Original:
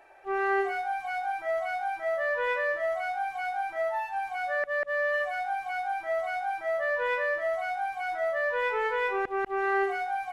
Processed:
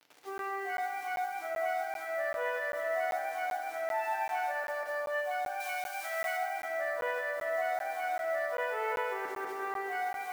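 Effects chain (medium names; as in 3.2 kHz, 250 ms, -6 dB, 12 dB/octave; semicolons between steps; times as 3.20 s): bit crusher 8-bit; 5.60–6.37 s: tilt shelf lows -9.5 dB; peak limiter -27 dBFS, peak gain reduction 8.5 dB; high-pass 220 Hz 12 dB/octave; FDN reverb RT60 3.4 s, high-frequency decay 0.45×, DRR -1 dB; crackling interface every 0.39 s, samples 512, zero, from 0.38 s; trim -4 dB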